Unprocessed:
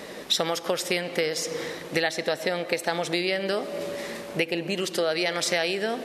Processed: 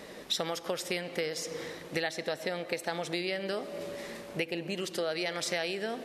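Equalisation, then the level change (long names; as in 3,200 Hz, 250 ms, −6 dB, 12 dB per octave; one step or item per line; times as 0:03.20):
low-shelf EQ 98 Hz +7 dB
−7.5 dB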